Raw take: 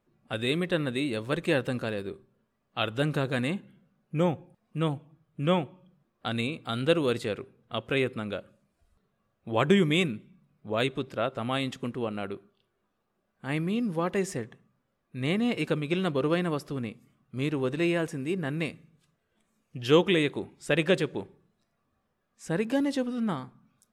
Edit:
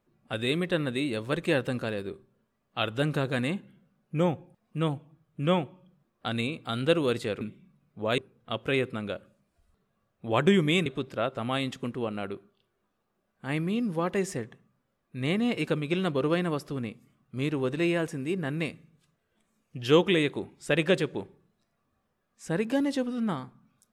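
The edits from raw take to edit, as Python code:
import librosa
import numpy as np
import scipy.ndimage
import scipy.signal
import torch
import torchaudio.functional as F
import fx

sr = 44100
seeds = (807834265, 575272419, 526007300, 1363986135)

y = fx.edit(x, sr, fx.move(start_s=10.09, length_s=0.77, to_s=7.41), tone=tone)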